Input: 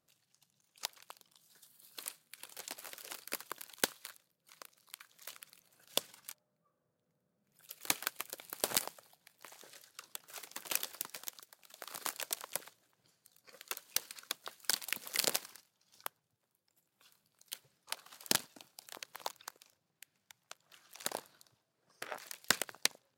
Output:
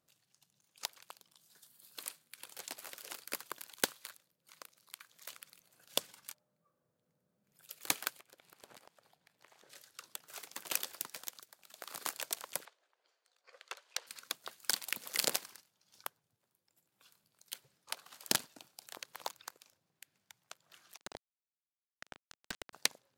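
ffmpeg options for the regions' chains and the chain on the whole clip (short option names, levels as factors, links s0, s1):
-filter_complex "[0:a]asettb=1/sr,asplit=3[s0][s1][s2];[s0]atrim=end=8.194[s3];[s1]atrim=start=8.19:end=9.7,asetpts=PTS-STARTPTS,afade=t=in:d=0.004:c=qsin,afade=t=out:st=1.506:d=0.004:c=qsin,lowpass=f=2700:p=1,acompressor=threshold=0.00112:ratio=3:attack=3.2:release=140:knee=1:detection=peak[s4];[s2]atrim=start=9.696[s5];[s3][s4]acrossfade=d=0.004:c1=hsin:c2=qsin[s6];[s6][s5]acrossfade=d=0.004:c1=qsin:c2=hsin,asettb=1/sr,asplit=3[s7][s8][s9];[s7]atrim=end=12.654[s10];[s8]atrim=start=12.65:end=14.07,asetpts=PTS-STARTPTS,afade=t=in:d=0.004:c=qsin,afade=t=out:st=1.416:d=0.004:c=qsin,highpass=f=450:w=0.5412,highpass=f=450:w=1.3066,adynamicsmooth=sensitivity=1:basefreq=4500[s11];[s9]atrim=start=14.066[s12];[s10][s11]acrossfade=d=0.004:c1=hsin:c2=qsin[s13];[s13][s12]acrossfade=d=0.004:c1=qsin:c2=hsin,asettb=1/sr,asplit=3[s14][s15][s16];[s14]atrim=end=20.974[s17];[s15]atrim=start=20.97:end=22.73,asetpts=PTS-STARTPTS,afade=t=in:d=0.004:c=qsin,afade=t=out:st=1.756:d=0.004:c=qsin,aeval=exprs='val(0)*gte(abs(val(0)),0.0224)':c=same,highpass=190,lowpass=6000,aeval=exprs='(tanh(44.7*val(0)+0.35)-tanh(0.35))/44.7':c=same[s18];[s16]atrim=start=22.726[s19];[s17][s18]acrossfade=d=0.004:c1=hsin:c2=qsin[s20];[s20][s19]acrossfade=d=0.004:c1=qsin:c2=hsin"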